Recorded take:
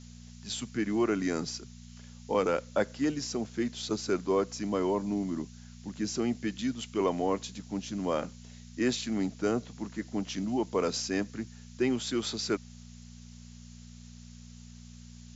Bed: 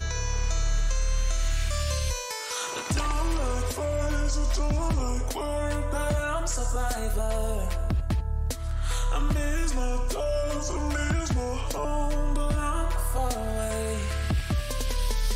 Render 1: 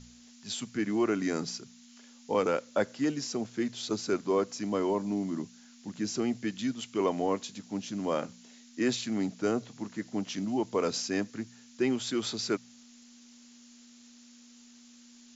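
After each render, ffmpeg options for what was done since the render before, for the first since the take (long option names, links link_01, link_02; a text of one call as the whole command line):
ffmpeg -i in.wav -af "bandreject=frequency=60:width_type=h:width=4,bandreject=frequency=120:width_type=h:width=4,bandreject=frequency=180:width_type=h:width=4" out.wav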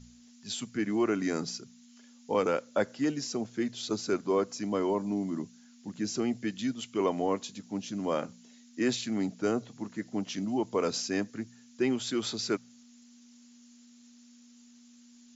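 ffmpeg -i in.wav -af "afftdn=noise_reduction=6:noise_floor=-55" out.wav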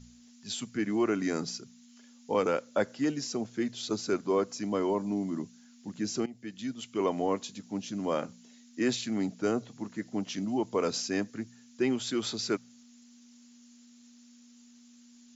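ffmpeg -i in.wav -filter_complex "[0:a]asplit=2[link_01][link_02];[link_01]atrim=end=6.26,asetpts=PTS-STARTPTS,afade=type=out:start_time=6.256:duration=0.004:curve=hsin:silence=0.125893[link_03];[link_02]atrim=start=6.26,asetpts=PTS-STARTPTS,afade=type=in:duration=1.06:curve=qsin:silence=0.125893[link_04];[link_03][link_04]concat=n=2:v=0:a=1" out.wav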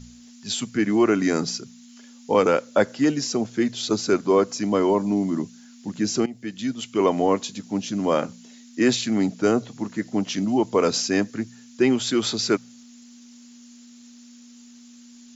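ffmpeg -i in.wav -af "volume=9dB" out.wav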